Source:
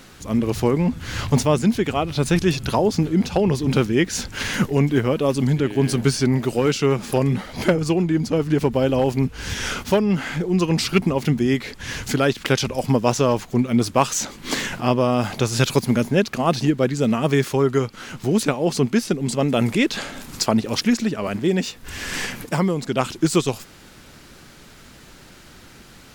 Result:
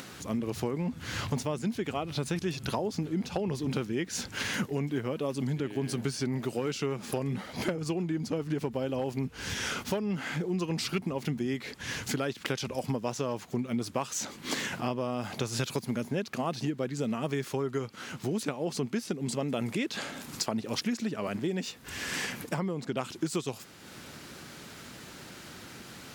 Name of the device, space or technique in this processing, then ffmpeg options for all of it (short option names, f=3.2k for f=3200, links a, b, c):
upward and downward compression: -filter_complex "[0:a]highpass=100,acompressor=mode=upward:threshold=-33dB:ratio=2.5,acompressor=threshold=-23dB:ratio=4,asettb=1/sr,asplit=3[a][b][c];[a]atrim=end=22.544[d];[b]atrim=start=22.54:end=22.97,asetpts=PTS-STARTPTS,afade=t=in:d=0.004:c=qsin,afade=t=out:st=0.426:d=0.004:c=qsin,highshelf=f=4.1k:g=-7.5[e];[c]atrim=start=22.966[f];[d][e]acrossfade=d=0.004:c1=hsin:c2=qsin[g];[g][f]acrossfade=d=0.004:c1=qsin:c2=hsin,volume=-5.5dB"